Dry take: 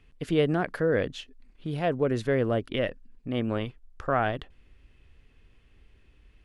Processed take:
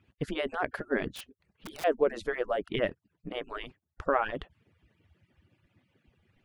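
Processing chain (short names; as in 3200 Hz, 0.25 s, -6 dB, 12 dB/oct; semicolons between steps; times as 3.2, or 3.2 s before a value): median-filter separation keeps percussive; high shelf 3000 Hz -7.5 dB; 1.12–1.84 wrapped overs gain 38 dB; gain +2 dB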